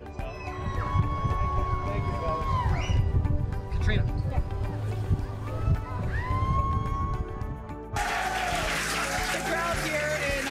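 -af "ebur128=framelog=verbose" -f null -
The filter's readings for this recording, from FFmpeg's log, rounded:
Integrated loudness:
  I:         -28.9 LUFS
  Threshold: -38.9 LUFS
Loudness range:
  LRA:         1.7 LU
  Threshold: -49.0 LUFS
  LRA low:   -29.9 LUFS
  LRA high:  -28.2 LUFS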